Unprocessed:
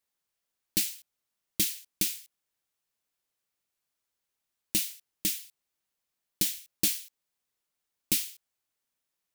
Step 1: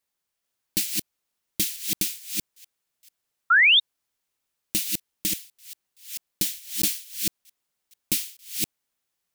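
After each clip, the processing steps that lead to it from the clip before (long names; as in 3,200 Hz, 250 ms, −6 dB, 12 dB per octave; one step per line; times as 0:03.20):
delay that plays each chunk backwards 441 ms, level −2.5 dB
sound drawn into the spectrogram rise, 0:03.50–0:03.80, 1,300–3,800 Hz −18 dBFS
level +2 dB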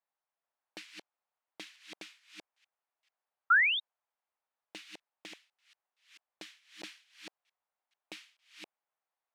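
four-pole ladder band-pass 920 Hz, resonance 35%
level +8 dB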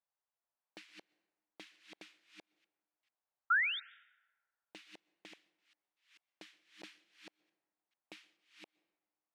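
high-shelf EQ 3,800 Hz −6.5 dB
on a send at −23.5 dB: convolution reverb RT60 1.3 s, pre-delay 112 ms
on the sum: level −5 dB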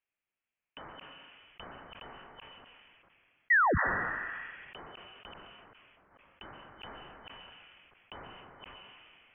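voice inversion scrambler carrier 3,300 Hz
level that may fall only so fast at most 23 dB per second
level +5 dB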